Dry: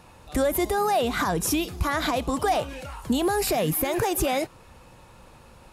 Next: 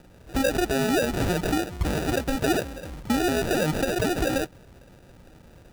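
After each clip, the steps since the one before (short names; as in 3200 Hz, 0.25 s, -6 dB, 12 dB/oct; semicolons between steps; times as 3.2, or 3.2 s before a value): sample-and-hold 41×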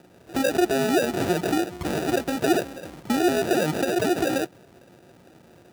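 HPF 140 Hz 12 dB/oct; small resonant body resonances 360/690 Hz, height 6 dB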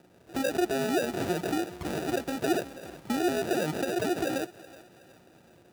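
thinning echo 0.371 s, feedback 48%, high-pass 420 Hz, level -18 dB; gain -6 dB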